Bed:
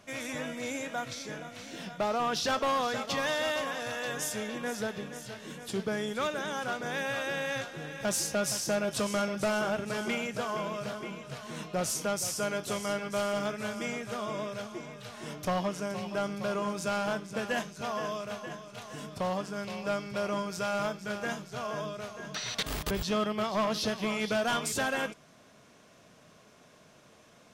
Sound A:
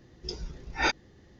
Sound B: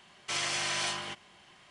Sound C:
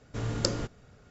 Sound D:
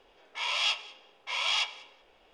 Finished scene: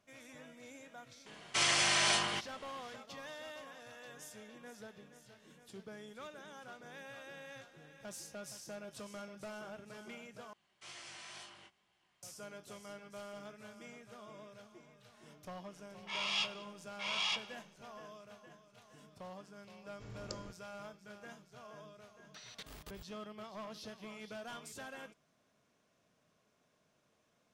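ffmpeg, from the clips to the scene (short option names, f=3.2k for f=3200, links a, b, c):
-filter_complex "[2:a]asplit=2[a][b];[0:a]volume=-17.5dB[c];[a]acontrast=45[d];[b]flanger=delay=16.5:depth=7.8:speed=2.1[e];[c]asplit=2[f][g];[f]atrim=end=10.534[h];[e]atrim=end=1.7,asetpts=PTS-STARTPTS,volume=-16dB[i];[g]atrim=start=12.226[j];[d]atrim=end=1.7,asetpts=PTS-STARTPTS,volume=-3.5dB,afade=t=in:d=0.004:c=hsin,afade=t=out:st=1.696:d=0.004:c=hsin,adelay=1260[k];[4:a]atrim=end=2.33,asetpts=PTS-STARTPTS,volume=-7dB,afade=t=in:d=0.004:c=hsin,afade=t=out:st=2.326:d=0.004:c=hsin,adelay=693252S[l];[3:a]atrim=end=1.1,asetpts=PTS-STARTPTS,volume=-18dB,afade=t=in:d=0.004:c=hsin,afade=t=out:st=1.096:d=0.004:c=hsin,adelay=19860[m];[h][i]acrossfade=d=0.004:c1=hsin:c2=hsin[n];[n][j]acrossfade=d=0.004:c1=hsin:c2=hsin[o];[o][k][l][m]amix=inputs=4:normalize=0"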